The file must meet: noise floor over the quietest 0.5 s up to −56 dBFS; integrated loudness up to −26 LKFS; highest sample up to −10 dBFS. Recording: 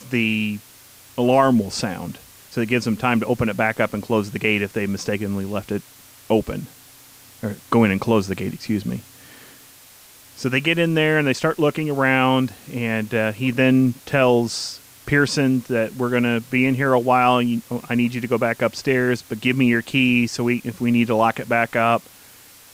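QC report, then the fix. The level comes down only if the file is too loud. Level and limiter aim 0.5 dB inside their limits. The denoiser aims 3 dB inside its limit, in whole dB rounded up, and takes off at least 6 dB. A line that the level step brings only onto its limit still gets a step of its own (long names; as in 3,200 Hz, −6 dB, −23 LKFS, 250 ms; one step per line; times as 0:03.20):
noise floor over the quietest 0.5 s −47 dBFS: out of spec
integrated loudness −20.5 LKFS: out of spec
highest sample −4.5 dBFS: out of spec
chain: broadband denoise 6 dB, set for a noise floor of −47 dBFS
level −6 dB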